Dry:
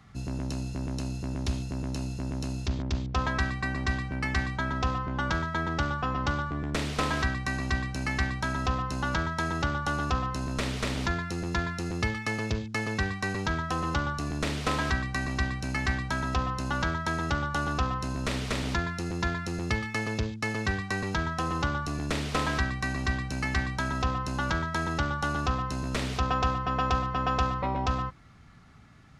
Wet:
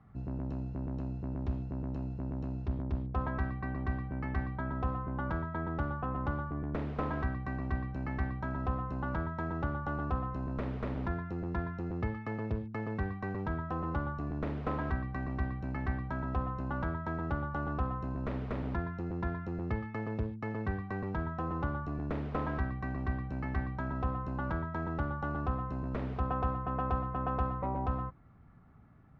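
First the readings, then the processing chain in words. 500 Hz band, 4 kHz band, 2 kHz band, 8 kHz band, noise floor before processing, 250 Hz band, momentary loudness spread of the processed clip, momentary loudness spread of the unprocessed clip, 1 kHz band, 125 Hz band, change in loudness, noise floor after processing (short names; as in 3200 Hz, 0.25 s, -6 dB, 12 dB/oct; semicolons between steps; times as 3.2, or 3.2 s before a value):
-4.0 dB, under -20 dB, -12.0 dB, under -35 dB, -39 dBFS, -4.0 dB, 3 LU, 4 LU, -7.0 dB, -4.0 dB, -6.0 dB, -43 dBFS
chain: LPF 1100 Hz 12 dB/oct; gain -4 dB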